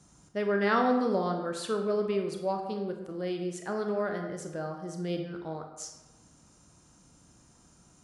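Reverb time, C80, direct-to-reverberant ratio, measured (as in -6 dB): 1.1 s, 8.0 dB, 3.5 dB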